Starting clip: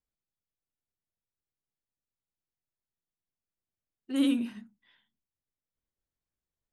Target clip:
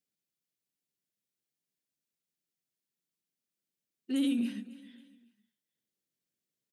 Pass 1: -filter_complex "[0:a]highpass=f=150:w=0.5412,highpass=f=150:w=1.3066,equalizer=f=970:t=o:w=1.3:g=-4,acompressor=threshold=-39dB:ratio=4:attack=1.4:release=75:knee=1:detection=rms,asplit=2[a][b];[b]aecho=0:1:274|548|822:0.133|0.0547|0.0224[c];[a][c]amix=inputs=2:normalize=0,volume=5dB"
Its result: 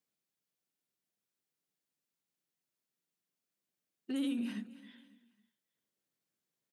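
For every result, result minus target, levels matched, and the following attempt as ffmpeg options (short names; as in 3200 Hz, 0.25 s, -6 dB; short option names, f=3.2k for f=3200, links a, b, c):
compressor: peak gain reduction +6.5 dB; 1000 Hz band +6.5 dB
-filter_complex "[0:a]highpass=f=150:w=0.5412,highpass=f=150:w=1.3066,equalizer=f=970:t=o:w=1.3:g=-4,acompressor=threshold=-31.5dB:ratio=4:attack=1.4:release=75:knee=1:detection=rms,asplit=2[a][b];[b]aecho=0:1:274|548|822:0.133|0.0547|0.0224[c];[a][c]amix=inputs=2:normalize=0,volume=5dB"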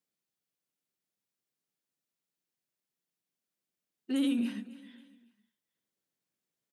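1000 Hz band +5.0 dB
-filter_complex "[0:a]highpass=f=150:w=0.5412,highpass=f=150:w=1.3066,equalizer=f=970:t=o:w=1.3:g=-13.5,acompressor=threshold=-31.5dB:ratio=4:attack=1.4:release=75:knee=1:detection=rms,asplit=2[a][b];[b]aecho=0:1:274|548|822:0.133|0.0547|0.0224[c];[a][c]amix=inputs=2:normalize=0,volume=5dB"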